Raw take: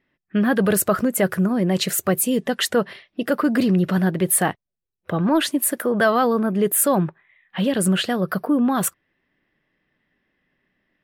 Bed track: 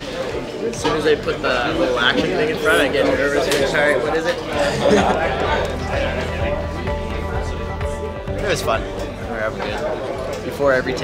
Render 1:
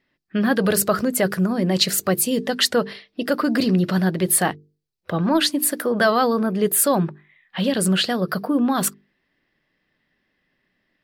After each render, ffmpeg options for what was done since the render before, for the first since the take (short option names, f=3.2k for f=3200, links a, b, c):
-af "equalizer=f=4.6k:t=o:w=0.63:g=9.5,bandreject=f=50:t=h:w=6,bandreject=f=100:t=h:w=6,bandreject=f=150:t=h:w=6,bandreject=f=200:t=h:w=6,bandreject=f=250:t=h:w=6,bandreject=f=300:t=h:w=6,bandreject=f=350:t=h:w=6,bandreject=f=400:t=h:w=6,bandreject=f=450:t=h:w=6"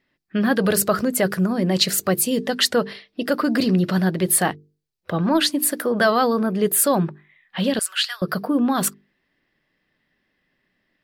-filter_complex "[0:a]asettb=1/sr,asplit=3[a][b][c];[a]atrim=end=7.794[d];[b]atrim=start=7.79:end=8.22,asetpts=PTS-STARTPTS,afade=t=in:d=0.004:c=qsin,afade=t=out:st=0.426:d=0.004:c=qsin,highpass=f=1.3k:w=0.5412,highpass=f=1.3k:w=1.3066[e];[c]atrim=start=8.216[f];[d][e]acrossfade=d=0.004:c1=hsin:c2=qsin[g];[g][f]acrossfade=d=0.004:c1=qsin:c2=hsin"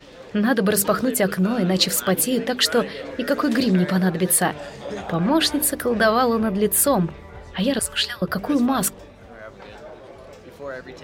-filter_complex "[1:a]volume=-17dB[a];[0:a][a]amix=inputs=2:normalize=0"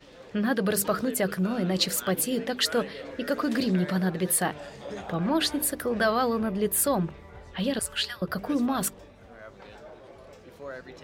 -af "volume=-6.5dB"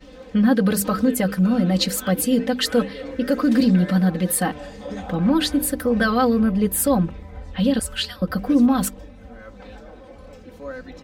-af "lowshelf=f=240:g=11.5,aecho=1:1:3.9:0.89"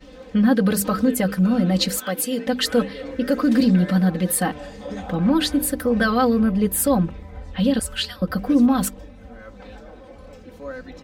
-filter_complex "[0:a]asettb=1/sr,asplit=3[a][b][c];[a]atrim=end=1.994[d];[b]atrim=start=1.99:end=2.47,asetpts=PTS-STARTPTS,afade=t=in:d=0.004:c=qsin,afade=t=out:st=0.476:d=0.004:c=qsin,highpass=f=520:p=1[e];[c]atrim=start=2.466[f];[d][e]acrossfade=d=0.004:c1=hsin:c2=qsin[g];[g][f]acrossfade=d=0.004:c1=qsin:c2=hsin"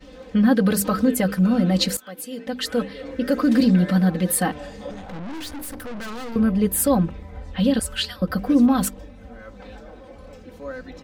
-filter_complex "[0:a]asettb=1/sr,asplit=3[a][b][c];[a]atrim=end=4.914[d];[b]atrim=start=4.91:end=6.36,asetpts=PTS-STARTPTS,afade=t=in:d=0.004:c=qsin,afade=t=out:st=1.446:d=0.004:c=qsin,aeval=exprs='(tanh(39.8*val(0)+0.7)-tanh(0.7))/39.8':c=same[e];[c]atrim=start=6.356[f];[d][e]acrossfade=d=0.004:c1=hsin:c2=qsin[g];[g][f]acrossfade=d=0.004:c1=qsin:c2=hsin,asplit=2[h][i];[h]atrim=end=1.97,asetpts=PTS-STARTPTS,afade=t=out:st=1.966:d=0.004:c=hsin:silence=0.16788[j];[i]atrim=start=1.97,asetpts=PTS-STARTPTS,afade=t=in:d=1.44:silence=0.16788[k];[j][k]concat=n=2:v=0:a=1"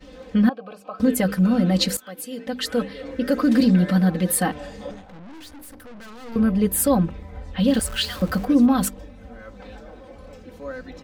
-filter_complex "[0:a]asettb=1/sr,asplit=3[a][b][c];[a]atrim=end=0.494[d];[b]atrim=start=0.49:end=1,asetpts=PTS-STARTPTS,afade=t=in:d=0.004:c=qsin,afade=t=out:st=0.506:d=0.004:c=qsin,asplit=3[e][f][g];[e]bandpass=f=730:t=q:w=8,volume=0dB[h];[f]bandpass=f=1.09k:t=q:w=8,volume=-6dB[i];[g]bandpass=f=2.44k:t=q:w=8,volume=-9dB[j];[h][i][j]amix=inputs=3:normalize=0[k];[c]atrim=start=0.996[l];[d][k]acrossfade=d=0.004:c1=hsin:c2=qsin[m];[m][l]acrossfade=d=0.004:c1=qsin:c2=hsin,asettb=1/sr,asplit=3[n][o][p];[n]atrim=end=7.684[q];[o]atrim=start=7.68:end=8.45,asetpts=PTS-STARTPTS,afade=t=in:d=0.004:c=qsin,afade=t=out:st=0.766:d=0.004:c=qsin,aeval=exprs='val(0)+0.5*0.0237*sgn(val(0))':c=same[r];[p]atrim=start=8.446[s];[q][r]acrossfade=d=0.004:c1=hsin:c2=qsin[t];[t][s]acrossfade=d=0.004:c1=qsin:c2=hsin,asplit=3[u][v][w];[u]atrim=end=5.05,asetpts=PTS-STARTPTS,afade=t=out:st=4.87:d=0.18:silence=0.375837[x];[v]atrim=start=5.05:end=6.21,asetpts=PTS-STARTPTS,volume=-8.5dB[y];[w]atrim=start=6.21,asetpts=PTS-STARTPTS,afade=t=in:d=0.18:silence=0.375837[z];[x][y][z]concat=n=3:v=0:a=1"